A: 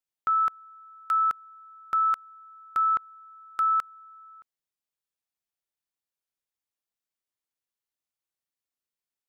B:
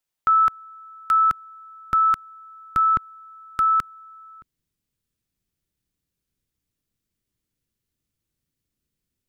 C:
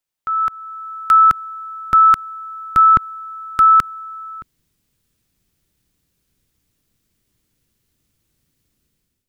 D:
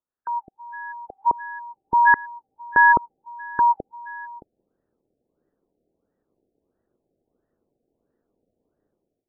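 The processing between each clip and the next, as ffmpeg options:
-af "asubboost=boost=12:cutoff=230,volume=2.24"
-af "alimiter=limit=0.112:level=0:latency=1:release=54,dynaudnorm=f=230:g=5:m=4.47"
-af "aeval=exprs='val(0)*sin(2*PI*360*n/s)':c=same,afftfilt=real='re*lt(b*sr/1024,770*pow(2000/770,0.5+0.5*sin(2*PI*1.5*pts/sr)))':imag='im*lt(b*sr/1024,770*pow(2000/770,0.5+0.5*sin(2*PI*1.5*pts/sr)))':win_size=1024:overlap=0.75"

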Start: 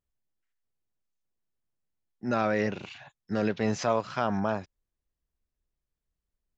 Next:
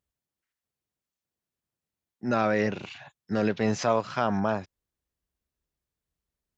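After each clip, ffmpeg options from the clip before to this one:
-af "highpass=58,volume=1.26"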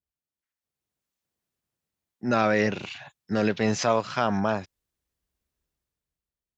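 -af "dynaudnorm=f=120:g=13:m=3.98,adynamicequalizer=threshold=0.0316:dfrequency=1800:dqfactor=0.7:tfrequency=1800:tqfactor=0.7:attack=5:release=100:ratio=0.375:range=2:mode=boostabove:tftype=highshelf,volume=0.398"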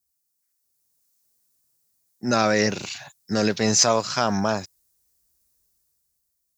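-af "aexciter=amount=4.6:drive=6.5:freq=4400,volume=1.26"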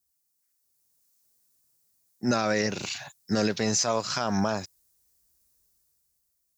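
-af "alimiter=limit=0.178:level=0:latency=1:release=183"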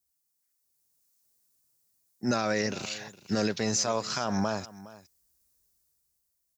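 -af "aecho=1:1:413:0.119,volume=0.75"

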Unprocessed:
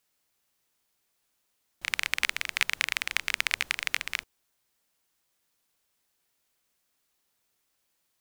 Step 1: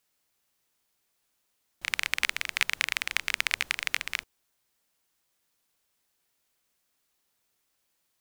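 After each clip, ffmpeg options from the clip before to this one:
-af anull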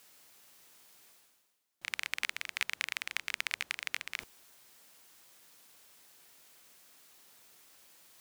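-af "highpass=f=150:p=1,areverse,acompressor=mode=upward:threshold=0.0224:ratio=2.5,areverse,volume=0.422"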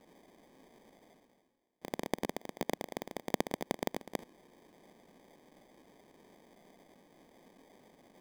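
-af "acrusher=samples=32:mix=1:aa=0.000001,lowshelf=f=150:t=q:w=1.5:g=-10,volume=0.891"

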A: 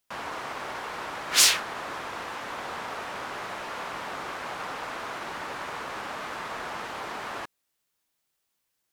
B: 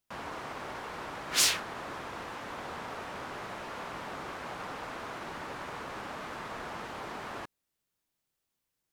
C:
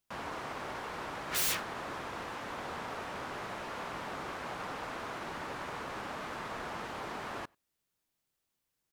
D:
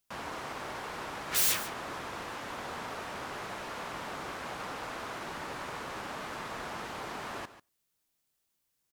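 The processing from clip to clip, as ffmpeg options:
-af "lowshelf=f=390:g=8.5,volume=0.473"
-filter_complex "[0:a]aeval=exprs='(mod(17.8*val(0)+1,2)-1)/17.8':c=same,asplit=2[s0][s1];[s1]adelay=93.29,volume=0.0316,highshelf=f=4000:g=-2.1[s2];[s0][s2]amix=inputs=2:normalize=0"
-af "highshelf=f=4000:g=5.5,aecho=1:1:143:0.188"

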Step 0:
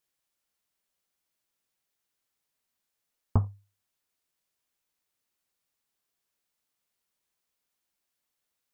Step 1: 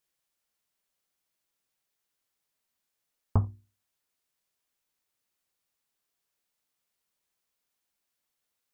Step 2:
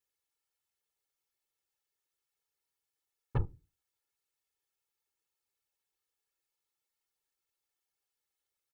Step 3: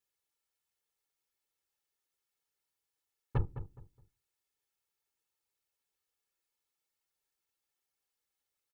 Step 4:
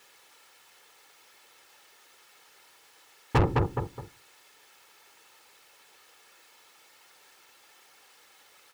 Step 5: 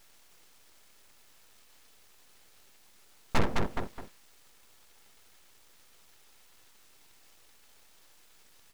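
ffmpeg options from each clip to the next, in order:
-af "bandreject=f=60:t=h:w=6,bandreject=f=120:t=h:w=6,bandreject=f=180:t=h:w=6,bandreject=f=240:t=h:w=6,bandreject=f=300:t=h:w=6,bandreject=f=360:t=h:w=6"
-af "afftfilt=real='hypot(re,im)*cos(2*PI*random(0))':imag='hypot(re,im)*sin(2*PI*random(1))':win_size=512:overlap=0.75,aeval=exprs='0.112*(cos(1*acos(clip(val(0)/0.112,-1,1)))-cos(1*PI/2))+0.0126*(cos(8*acos(clip(val(0)/0.112,-1,1)))-cos(8*PI/2))':c=same,aecho=1:1:2.3:0.75,volume=0.794"
-filter_complex "[0:a]asplit=2[s0][s1];[s1]adelay=209,lowpass=f=1600:p=1,volume=0.282,asplit=2[s2][s3];[s3]adelay=209,lowpass=f=1600:p=1,volume=0.26,asplit=2[s4][s5];[s5]adelay=209,lowpass=f=1600:p=1,volume=0.26[s6];[s0][s2][s4][s6]amix=inputs=4:normalize=0"
-filter_complex "[0:a]asplit=2[s0][s1];[s1]highpass=f=720:p=1,volume=79.4,asoftclip=type=tanh:threshold=0.1[s2];[s0][s2]amix=inputs=2:normalize=0,lowpass=f=2200:p=1,volume=0.501,volume=2.11"
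-af "aeval=exprs='abs(val(0))':c=same"

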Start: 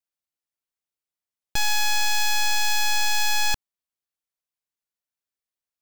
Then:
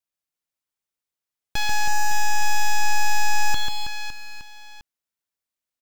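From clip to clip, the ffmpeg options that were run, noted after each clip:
-filter_complex "[0:a]acrossover=split=5000[s0][s1];[s1]acompressor=threshold=0.0178:ratio=4:attack=1:release=60[s2];[s0][s2]amix=inputs=2:normalize=0,aecho=1:1:140|322|558.6|866.2|1266:0.631|0.398|0.251|0.158|0.1"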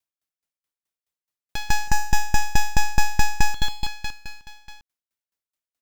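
-af "aeval=exprs='val(0)*pow(10,-23*if(lt(mod(4.7*n/s,1),2*abs(4.7)/1000),1-mod(4.7*n/s,1)/(2*abs(4.7)/1000),(mod(4.7*n/s,1)-2*abs(4.7)/1000)/(1-2*abs(4.7)/1000))/20)':c=same,volume=1.88"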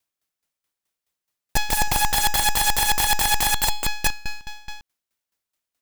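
-af "aeval=exprs='(mod(12.6*val(0)+1,2)-1)/12.6':c=same,volume=2.24"

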